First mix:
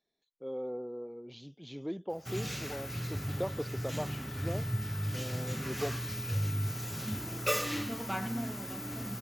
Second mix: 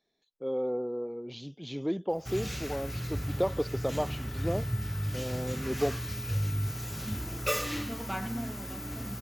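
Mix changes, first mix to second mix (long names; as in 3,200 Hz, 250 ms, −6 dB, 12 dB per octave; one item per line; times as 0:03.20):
speech +6.5 dB
background: remove high-pass filter 93 Hz 24 dB per octave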